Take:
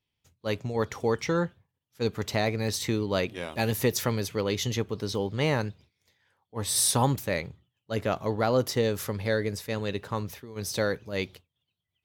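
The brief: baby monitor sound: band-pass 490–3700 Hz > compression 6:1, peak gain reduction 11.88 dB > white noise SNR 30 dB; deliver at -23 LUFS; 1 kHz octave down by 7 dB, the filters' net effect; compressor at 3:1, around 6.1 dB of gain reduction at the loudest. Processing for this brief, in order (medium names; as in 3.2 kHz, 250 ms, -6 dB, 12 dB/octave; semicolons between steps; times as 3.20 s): peaking EQ 1 kHz -9 dB; compression 3:1, threshold -29 dBFS; band-pass 490–3700 Hz; compression 6:1, threshold -43 dBFS; white noise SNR 30 dB; trim +24.5 dB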